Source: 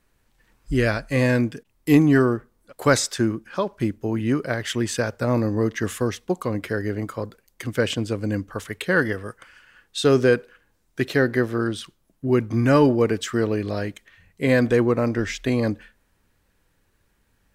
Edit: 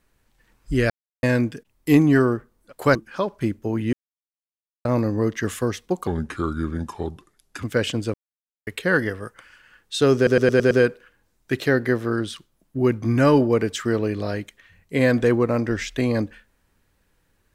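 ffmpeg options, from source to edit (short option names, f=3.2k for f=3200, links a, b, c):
-filter_complex "[0:a]asplit=15[a][b][c][d][e][f][g][h][i][j][k][l][m][n][o];[a]atrim=end=0.9,asetpts=PTS-STARTPTS,afade=t=out:st=0.896:d=0.004:c=hsin[p];[b]atrim=start=0.9:end=1.23,asetpts=PTS-STARTPTS,volume=0[q];[c]atrim=start=1.23:end=2.952,asetpts=PTS-STARTPTS,afade=t=in:d=0.004:c=hsin[r];[d]atrim=start=3.338:end=4.32,asetpts=PTS-STARTPTS,afade=t=out:st=0.978:d=0.004:c=hsin[s];[e]atrim=start=4.32:end=5.24,asetpts=PTS-STARTPTS,volume=0[t];[f]atrim=start=5.24:end=6.464,asetpts=PTS-STARTPTS,afade=t=in:d=0.004:c=hsin[u];[g]atrim=start=6.46:end=7.66,asetpts=PTS-STARTPTS,asetrate=33957,aresample=44100,atrim=end_sample=68727,asetpts=PTS-STARTPTS[v];[h]atrim=start=7.656:end=8.17,asetpts=PTS-STARTPTS,afade=t=out:st=0.51:d=0.004:c=hsin[w];[i]atrim=start=8.17:end=8.7,asetpts=PTS-STARTPTS,volume=0[x];[j]atrim=start=8.7:end=10.302,asetpts=PTS-STARTPTS,afade=t=in:d=0.004:c=hsin[y];[k]atrim=start=10.188:end=10.302[z];[l]atrim=start=10.188:end=10.302[aa];[m]atrim=start=10.188:end=10.302[ab];[n]atrim=start=10.188:end=10.302[ac];[o]atrim=start=10.188[ad];[p][q][r]concat=n=3:v=0:a=1[ae];[s][t][u]concat=n=3:v=0:a=1[af];[ae][af]acrossfade=d=0.004:c1=hsin:c2=hsin[ag];[ag][v]acrossfade=d=0.004:c1=hsin:c2=hsin[ah];[w][x][y]concat=n=3:v=0:a=1[ai];[ah][ai]acrossfade=d=0.004:c1=hsin:c2=hsin[aj];[aj][z]acrossfade=d=0.004:c1=hsin:c2=hsin[ak];[ak][aa]acrossfade=d=0.004:c1=hsin:c2=hsin[al];[al][ab]acrossfade=d=0.004:c1=hsin:c2=hsin[am];[am][ac]acrossfade=d=0.004:c1=hsin:c2=hsin[an];[an][ad]acrossfade=d=0.004:c1=hsin:c2=hsin"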